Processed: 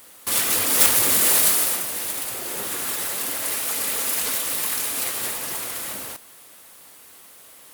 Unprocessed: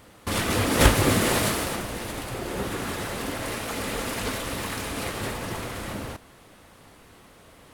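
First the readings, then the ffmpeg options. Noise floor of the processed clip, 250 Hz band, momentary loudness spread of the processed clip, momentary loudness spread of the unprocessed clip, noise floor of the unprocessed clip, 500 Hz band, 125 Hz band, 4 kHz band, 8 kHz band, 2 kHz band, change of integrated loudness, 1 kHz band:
-47 dBFS, -9.5 dB, 13 LU, 13 LU, -52 dBFS, -6.0 dB, -16.0 dB, +3.5 dB, +11.0 dB, -0.5 dB, +6.5 dB, -2.5 dB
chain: -af "aeval=exprs='0.841*sin(PI/2*3.98*val(0)/0.841)':c=same,aemphasis=mode=production:type=riaa,volume=0.133"

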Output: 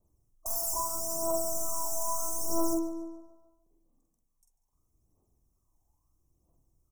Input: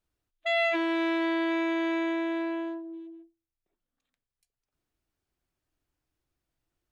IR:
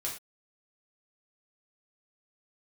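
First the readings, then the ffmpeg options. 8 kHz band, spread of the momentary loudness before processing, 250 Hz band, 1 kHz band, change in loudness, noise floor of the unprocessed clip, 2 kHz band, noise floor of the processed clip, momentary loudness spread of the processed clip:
no reading, 14 LU, -8.5 dB, -2.0 dB, -3.0 dB, under -85 dBFS, under -40 dB, -77 dBFS, 11 LU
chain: -filter_complex "[0:a]adynamicequalizer=threshold=0.00316:dfrequency=1600:dqfactor=3.8:tfrequency=1600:tqfactor=3.8:attack=5:release=100:ratio=0.375:range=3:mode=cutabove:tftype=bell,asplit=2[s0][s1];[s1]alimiter=level_in=2.11:limit=0.0631:level=0:latency=1,volume=0.473,volume=0.891[s2];[s0][s2]amix=inputs=2:normalize=0,aeval=exprs='(mod(21.1*val(0)+1,2)-1)/21.1':c=same,aphaser=in_gain=1:out_gain=1:delay=1.3:decay=0.71:speed=0.77:type=triangular,asuperstop=centerf=2600:order=20:qfactor=0.61,asplit=2[s3][s4];[s4]adelay=46,volume=0.668[s5];[s3][s5]amix=inputs=2:normalize=0,asplit=2[s6][s7];[s7]adelay=144,lowpass=f=4400:p=1,volume=0.237,asplit=2[s8][s9];[s9]adelay=144,lowpass=f=4400:p=1,volume=0.55,asplit=2[s10][s11];[s11]adelay=144,lowpass=f=4400:p=1,volume=0.55,asplit=2[s12][s13];[s13]adelay=144,lowpass=f=4400:p=1,volume=0.55,asplit=2[s14][s15];[s15]adelay=144,lowpass=f=4400:p=1,volume=0.55,asplit=2[s16][s17];[s17]adelay=144,lowpass=f=4400:p=1,volume=0.55[s18];[s8][s10][s12][s14][s16][s18]amix=inputs=6:normalize=0[s19];[s6][s19]amix=inputs=2:normalize=0,volume=0.75"

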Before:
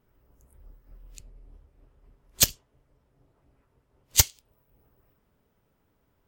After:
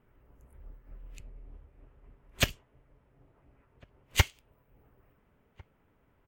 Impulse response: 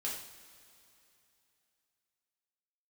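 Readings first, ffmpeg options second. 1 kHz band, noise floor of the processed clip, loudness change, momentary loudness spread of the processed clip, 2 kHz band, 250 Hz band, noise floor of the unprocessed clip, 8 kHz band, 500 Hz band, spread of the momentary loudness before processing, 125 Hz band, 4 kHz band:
+2.5 dB, -69 dBFS, -7.5 dB, 3 LU, +3.5 dB, +2.0 dB, -71 dBFS, -15.0 dB, +2.0 dB, 2 LU, +2.0 dB, -5.5 dB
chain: -filter_complex "[0:a]acrossover=split=5000[s0][s1];[s1]acompressor=threshold=0.0794:ratio=4:attack=1:release=60[s2];[s0][s2]amix=inputs=2:normalize=0,highshelf=f=3400:t=q:w=1.5:g=-10,asplit=2[s3][s4];[s4]adelay=1399,volume=0.0447,highshelf=f=4000:g=-31.5[s5];[s3][s5]amix=inputs=2:normalize=0,volume=1.26"

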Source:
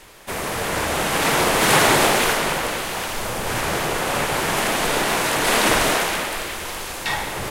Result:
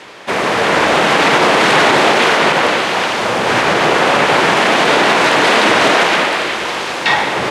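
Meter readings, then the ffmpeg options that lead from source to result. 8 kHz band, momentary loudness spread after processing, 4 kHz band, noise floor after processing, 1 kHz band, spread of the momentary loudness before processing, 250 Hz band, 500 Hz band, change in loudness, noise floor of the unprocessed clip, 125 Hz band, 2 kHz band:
-1.5 dB, 6 LU, +7.5 dB, -21 dBFS, +9.5 dB, 11 LU, +8.0 dB, +9.5 dB, +8.0 dB, -31 dBFS, +3.0 dB, +9.5 dB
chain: -af "highpass=190,lowpass=4300,alimiter=level_in=4.47:limit=0.891:release=50:level=0:latency=1,volume=0.891"

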